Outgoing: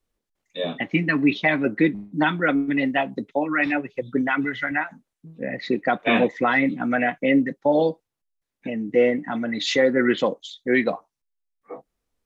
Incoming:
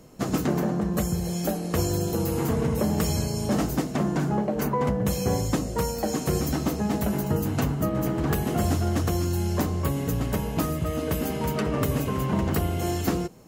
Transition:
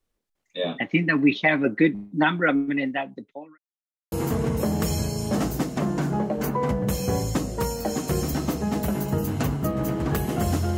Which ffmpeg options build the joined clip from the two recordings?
ffmpeg -i cue0.wav -i cue1.wav -filter_complex "[0:a]apad=whole_dur=10.77,atrim=end=10.77,asplit=2[link_01][link_02];[link_01]atrim=end=3.58,asetpts=PTS-STARTPTS,afade=type=out:start_time=2.46:duration=1.12[link_03];[link_02]atrim=start=3.58:end=4.12,asetpts=PTS-STARTPTS,volume=0[link_04];[1:a]atrim=start=2.3:end=8.95,asetpts=PTS-STARTPTS,afade=type=in:duration=0.004:curve=hsin[link_05];[link_03][link_04][link_05]concat=n=3:v=0:a=1" out.wav

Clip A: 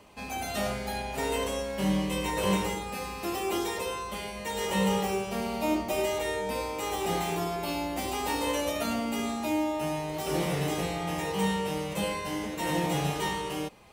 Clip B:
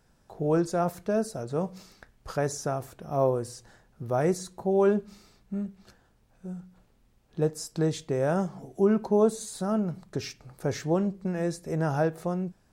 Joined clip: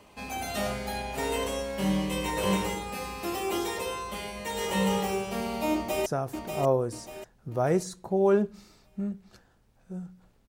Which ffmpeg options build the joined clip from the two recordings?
ffmpeg -i cue0.wav -i cue1.wav -filter_complex "[0:a]apad=whole_dur=10.48,atrim=end=10.48,atrim=end=6.062[link_01];[1:a]atrim=start=2.598:end=7.02[link_02];[link_01][link_02]acrossfade=duration=0.004:curve1=hsin:curve2=hsin,asplit=2[link_03][link_04];[link_04]afade=type=in:start_time=5.74:duration=0.01,afade=type=out:start_time=6.06:duration=0.01,aecho=0:1:590|1180|1770|2360|2950:0.530884|0.212354|0.0849415|0.0339766|0.0135906[link_05];[link_03][link_05]amix=inputs=2:normalize=0" out.wav

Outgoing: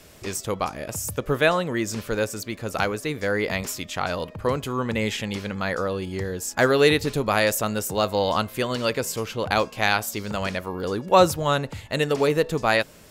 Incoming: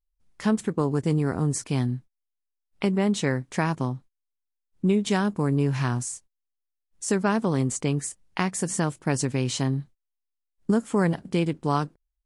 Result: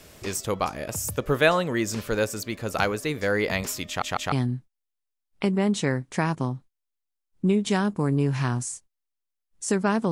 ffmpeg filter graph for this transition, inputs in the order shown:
ffmpeg -i cue0.wav -i cue1.wav -filter_complex "[0:a]apad=whole_dur=10.11,atrim=end=10.11,asplit=3[link_01][link_02][link_03];[link_01]atrim=end=4.022[link_04];[link_02]atrim=start=3.868:end=4.022[link_05];[link_03]atrim=start=3.868:end=4.022[link_06];[1:a]atrim=start=1.718:end=7.51[link_07];[link_04][link_05]acrossfade=duration=0.004:curve1=hsin:curve2=hsin[link_08];[link_08][link_06]acrossfade=duration=0.004:curve1=hsin:curve2=hsin[link_09];[link_09][link_07]acrossfade=duration=0.004:curve1=hsin:curve2=hsin" out.wav

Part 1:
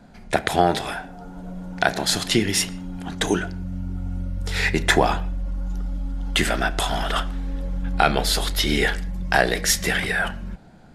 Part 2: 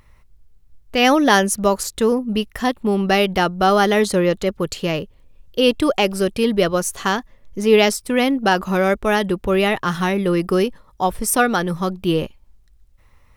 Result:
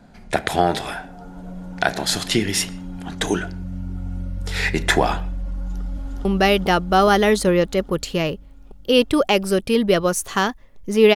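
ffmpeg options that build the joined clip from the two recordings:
ffmpeg -i cue0.wav -i cue1.wav -filter_complex "[0:a]apad=whole_dur=11.15,atrim=end=11.15,atrim=end=6.252[link_01];[1:a]atrim=start=2.938:end=7.84[link_02];[link_01][link_02]acrossfade=duration=0.004:curve1=hsin:curve2=hsin,asplit=2[link_03][link_04];[link_04]afade=type=in:start_time=5.55:duration=0.01,afade=type=out:start_time=6.25:duration=0.01,aecho=0:1:410|820|1230|1640|2050|2460|2870|3280|3690|4100|4510|4920:0.794328|0.55603|0.389221|0.272455|0.190718|0.133503|0.0934519|0.0654163|0.0457914|0.032054|0.0224378|0.0157065[link_05];[link_03][link_05]amix=inputs=2:normalize=0" out.wav

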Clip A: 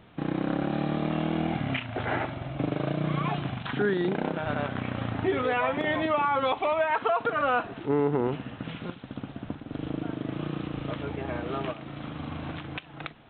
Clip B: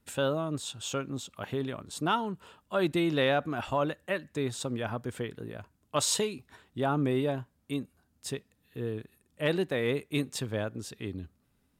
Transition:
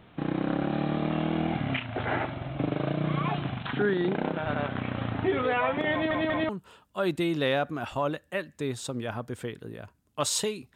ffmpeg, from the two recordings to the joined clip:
ffmpeg -i cue0.wav -i cue1.wav -filter_complex "[0:a]apad=whole_dur=10.75,atrim=end=10.75,asplit=3[link_01][link_02][link_03];[link_01]atrim=end=6.112[link_04];[link_02]atrim=start=5.918:end=6.112[link_05];[link_03]atrim=start=5.918:end=6.112[link_06];[1:a]atrim=start=2.248:end=6.51[link_07];[link_04][link_05]acrossfade=duration=0.004:curve1=hsin:curve2=hsin[link_08];[link_08][link_06]acrossfade=duration=0.004:curve1=hsin:curve2=hsin[link_09];[link_09][link_07]acrossfade=duration=0.004:curve1=hsin:curve2=hsin" out.wav

